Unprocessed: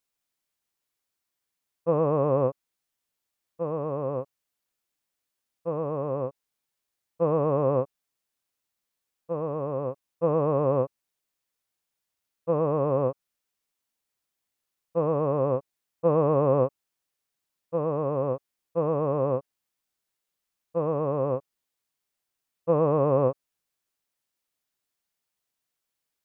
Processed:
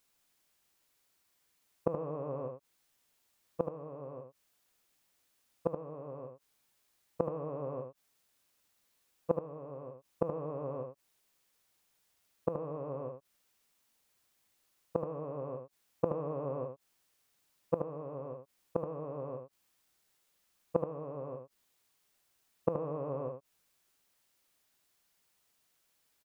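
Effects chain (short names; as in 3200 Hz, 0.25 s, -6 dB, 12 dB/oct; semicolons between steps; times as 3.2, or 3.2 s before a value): flipped gate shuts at -23 dBFS, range -24 dB; echo 75 ms -7 dB; gain +8 dB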